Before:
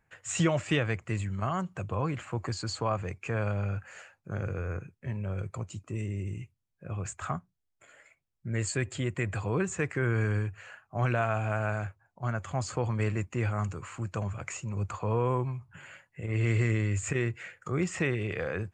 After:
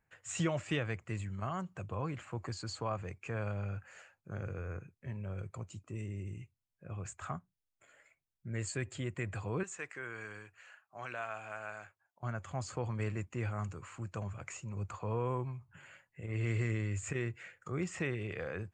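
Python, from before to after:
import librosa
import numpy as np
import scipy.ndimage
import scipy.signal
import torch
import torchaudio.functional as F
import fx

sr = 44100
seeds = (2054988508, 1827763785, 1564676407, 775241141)

y = fx.highpass(x, sr, hz=1100.0, slope=6, at=(9.63, 12.23))
y = y * 10.0 ** (-7.0 / 20.0)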